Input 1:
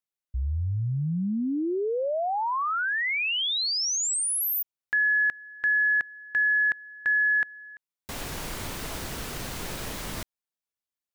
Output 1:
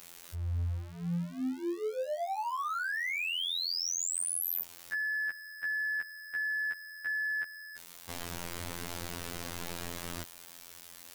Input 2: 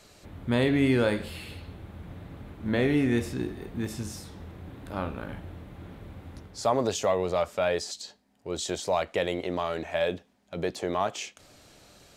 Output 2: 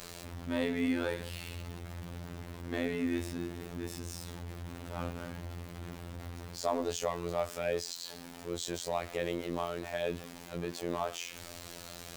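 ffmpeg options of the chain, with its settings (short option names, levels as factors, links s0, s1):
-af "aeval=exprs='val(0)+0.5*0.0224*sgn(val(0))':c=same,afftfilt=real='hypot(re,im)*cos(PI*b)':imag='0':win_size=2048:overlap=0.75,volume=0.531"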